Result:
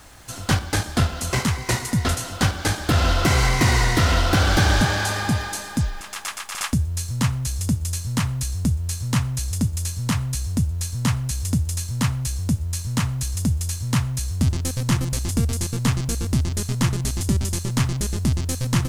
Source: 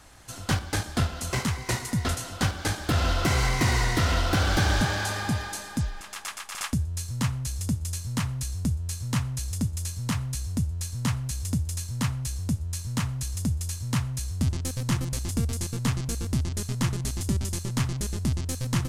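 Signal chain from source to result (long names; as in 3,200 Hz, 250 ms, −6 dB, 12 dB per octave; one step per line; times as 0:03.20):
bit-depth reduction 10 bits, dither none
level +5.5 dB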